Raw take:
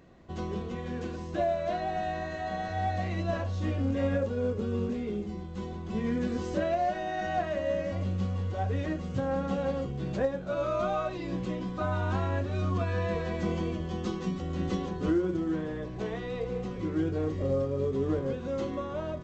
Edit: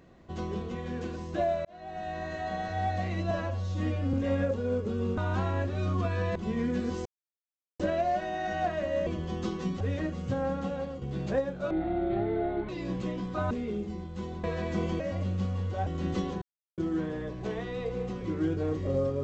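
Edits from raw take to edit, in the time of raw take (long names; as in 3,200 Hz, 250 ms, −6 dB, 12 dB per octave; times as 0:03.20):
0:01.65–0:02.32: fade in
0:03.31–0:03.86: time-stretch 1.5×
0:04.90–0:05.83: swap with 0:11.94–0:13.12
0:06.53: splice in silence 0.74 s
0:07.80–0:08.67: swap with 0:13.68–0:14.42
0:09.27–0:09.88: fade out, to −8 dB
0:10.57–0:11.12: play speed 56%
0:14.97–0:15.33: silence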